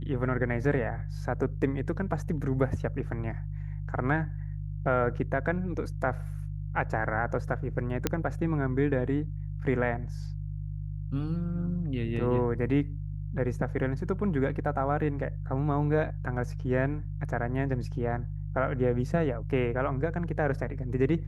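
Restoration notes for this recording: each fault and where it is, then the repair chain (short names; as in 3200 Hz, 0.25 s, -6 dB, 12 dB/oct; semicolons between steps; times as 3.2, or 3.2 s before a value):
hum 50 Hz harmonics 3 -35 dBFS
8.07 pop -10 dBFS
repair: de-click; de-hum 50 Hz, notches 3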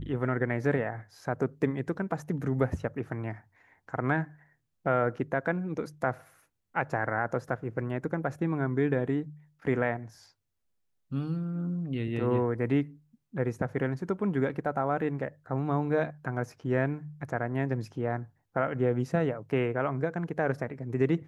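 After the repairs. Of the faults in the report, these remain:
none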